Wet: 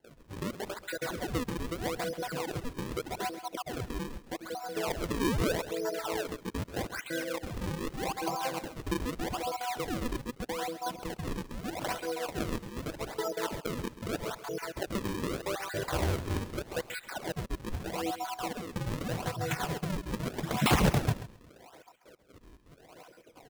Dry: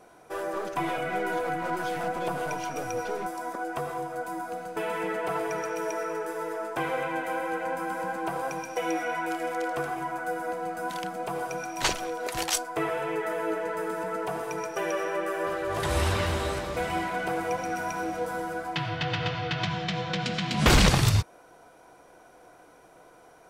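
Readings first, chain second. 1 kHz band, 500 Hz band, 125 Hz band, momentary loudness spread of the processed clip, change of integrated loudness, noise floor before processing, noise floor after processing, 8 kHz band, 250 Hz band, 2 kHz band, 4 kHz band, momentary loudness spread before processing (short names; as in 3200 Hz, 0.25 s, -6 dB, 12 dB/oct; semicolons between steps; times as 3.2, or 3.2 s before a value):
-7.0 dB, -5.5 dB, -4.0 dB, 8 LU, -5.0 dB, -54 dBFS, -58 dBFS, -5.5 dB, -1.5 dB, -7.0 dB, -6.5 dB, 6 LU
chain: random spectral dropouts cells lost 55%; HPF 61 Hz; band shelf 7800 Hz -9.5 dB; in parallel at -1 dB: compressor, threshold -43 dBFS, peak gain reduction 23 dB; on the sum: painted sound rise, 5.2–5.54, 240–1900 Hz -27 dBFS; decimation with a swept rate 36×, swing 160% 0.81 Hz; on a send: feedback echo 0.134 s, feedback 15%, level -14 dB; on the sum: gain -2.5 dB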